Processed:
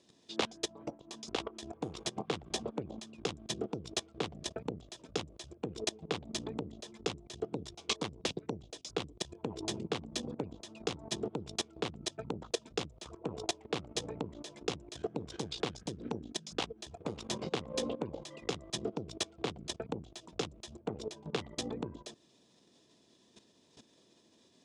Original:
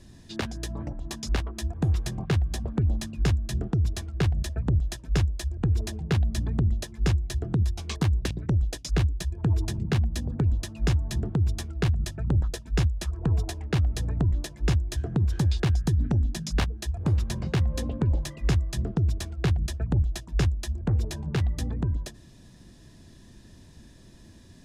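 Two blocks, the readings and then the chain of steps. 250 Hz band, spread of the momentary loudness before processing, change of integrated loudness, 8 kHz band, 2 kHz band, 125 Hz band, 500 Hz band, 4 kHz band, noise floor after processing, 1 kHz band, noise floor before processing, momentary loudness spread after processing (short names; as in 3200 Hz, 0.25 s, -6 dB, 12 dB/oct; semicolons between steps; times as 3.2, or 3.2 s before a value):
-9.5 dB, 4 LU, -12.0 dB, -2.5 dB, -6.5 dB, -23.0 dB, -1.0 dB, -0.5 dB, -67 dBFS, -2.5 dB, -51 dBFS, 6 LU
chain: added harmonics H 2 -8 dB, 3 -42 dB, 4 -28 dB, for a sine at -15.5 dBFS; level quantiser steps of 16 dB; speaker cabinet 320–8400 Hz, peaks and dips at 450 Hz +5 dB, 1700 Hz -9 dB, 3400 Hz +4 dB; gain +4.5 dB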